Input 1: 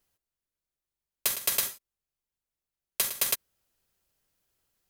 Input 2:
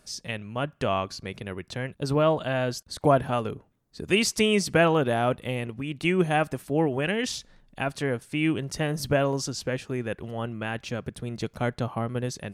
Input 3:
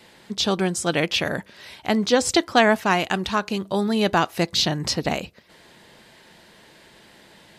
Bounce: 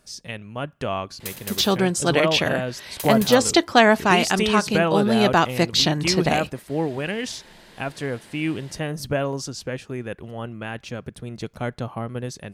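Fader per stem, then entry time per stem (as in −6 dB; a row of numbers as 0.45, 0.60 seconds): −6.5, −0.5, +2.0 decibels; 0.00, 0.00, 1.20 seconds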